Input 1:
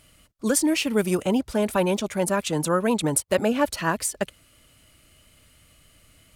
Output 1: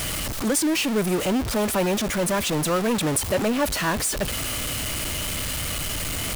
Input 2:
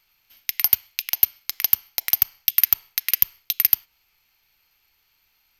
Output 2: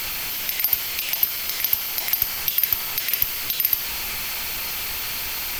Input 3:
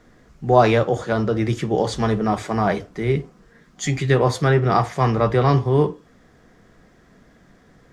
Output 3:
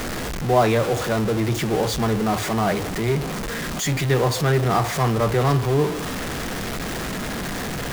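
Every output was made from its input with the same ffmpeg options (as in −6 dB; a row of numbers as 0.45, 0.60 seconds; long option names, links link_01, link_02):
-af "aeval=exprs='val(0)+0.5*0.141*sgn(val(0))':channel_layout=same,volume=-5dB"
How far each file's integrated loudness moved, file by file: 0.0, −1.5, −2.5 LU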